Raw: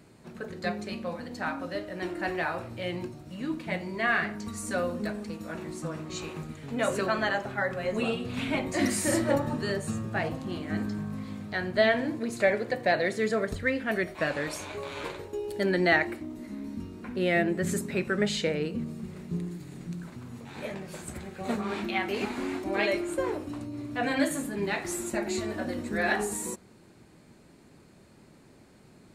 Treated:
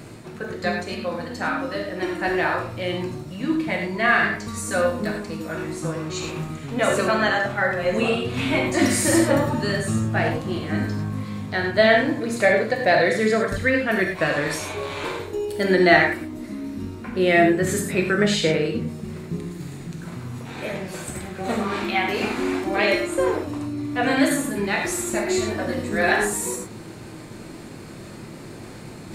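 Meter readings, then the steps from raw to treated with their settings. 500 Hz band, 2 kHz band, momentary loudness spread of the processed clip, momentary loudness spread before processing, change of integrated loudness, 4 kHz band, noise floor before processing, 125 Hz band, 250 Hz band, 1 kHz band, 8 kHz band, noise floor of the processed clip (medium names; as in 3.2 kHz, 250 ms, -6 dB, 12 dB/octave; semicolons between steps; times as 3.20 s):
+8.0 dB, +8.5 dB, 16 LU, 13 LU, +8.0 dB, +8.0 dB, -56 dBFS, +8.0 dB, +7.5 dB, +8.5 dB, +8.0 dB, -39 dBFS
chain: reverse; upward compressor, threshold -36 dBFS; reverse; gated-style reverb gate 130 ms flat, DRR 1.5 dB; trim +6 dB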